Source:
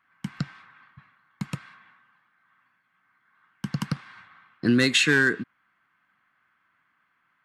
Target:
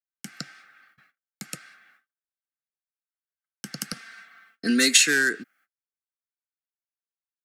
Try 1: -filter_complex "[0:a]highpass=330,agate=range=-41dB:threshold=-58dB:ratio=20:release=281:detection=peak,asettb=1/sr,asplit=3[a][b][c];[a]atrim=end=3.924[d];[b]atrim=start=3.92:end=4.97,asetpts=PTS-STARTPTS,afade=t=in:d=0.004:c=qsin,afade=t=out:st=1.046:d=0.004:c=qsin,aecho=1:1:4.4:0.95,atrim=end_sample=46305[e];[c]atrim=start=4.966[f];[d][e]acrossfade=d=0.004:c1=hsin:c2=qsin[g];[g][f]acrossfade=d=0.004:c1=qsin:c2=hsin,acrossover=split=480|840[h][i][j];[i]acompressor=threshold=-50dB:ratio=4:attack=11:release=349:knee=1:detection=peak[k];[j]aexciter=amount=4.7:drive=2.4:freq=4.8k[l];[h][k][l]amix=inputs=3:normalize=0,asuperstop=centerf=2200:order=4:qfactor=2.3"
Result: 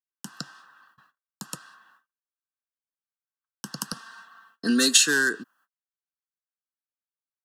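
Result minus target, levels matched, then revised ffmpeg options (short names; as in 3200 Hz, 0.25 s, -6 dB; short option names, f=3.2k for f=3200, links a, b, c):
1000 Hz band +4.0 dB
-filter_complex "[0:a]highpass=330,agate=range=-41dB:threshold=-58dB:ratio=20:release=281:detection=peak,asettb=1/sr,asplit=3[a][b][c];[a]atrim=end=3.924[d];[b]atrim=start=3.92:end=4.97,asetpts=PTS-STARTPTS,afade=t=in:d=0.004:c=qsin,afade=t=out:st=1.046:d=0.004:c=qsin,aecho=1:1:4.4:0.95,atrim=end_sample=46305[e];[c]atrim=start=4.966[f];[d][e]acrossfade=d=0.004:c1=hsin:c2=qsin[g];[g][f]acrossfade=d=0.004:c1=qsin:c2=hsin,acrossover=split=480|840[h][i][j];[i]acompressor=threshold=-50dB:ratio=4:attack=11:release=349:knee=1:detection=peak[k];[j]aexciter=amount=4.7:drive=2.4:freq=4.8k[l];[h][k][l]amix=inputs=3:normalize=0,asuperstop=centerf=1000:order=4:qfactor=2.3"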